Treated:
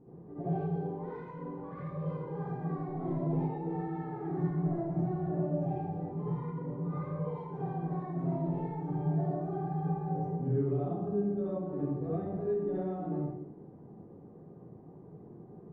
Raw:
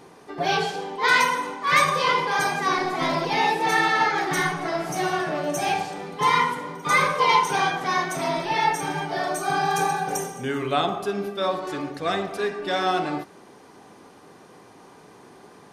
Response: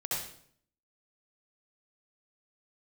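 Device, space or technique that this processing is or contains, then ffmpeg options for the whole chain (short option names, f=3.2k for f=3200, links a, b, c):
television next door: -filter_complex "[0:a]acompressor=threshold=-26dB:ratio=6,lowpass=280[a];[1:a]atrim=start_sample=2205[b];[a][b]afir=irnorm=-1:irlink=0"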